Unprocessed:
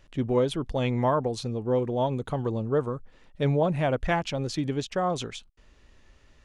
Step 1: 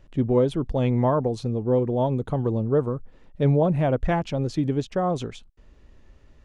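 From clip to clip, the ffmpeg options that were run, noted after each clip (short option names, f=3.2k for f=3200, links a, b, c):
-af "tiltshelf=f=970:g=5.5"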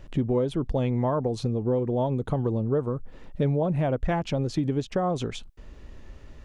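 -af "acompressor=threshold=-33dB:ratio=3,volume=7.5dB"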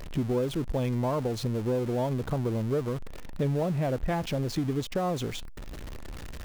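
-af "aeval=exprs='val(0)+0.5*0.0282*sgn(val(0))':c=same,volume=-4.5dB"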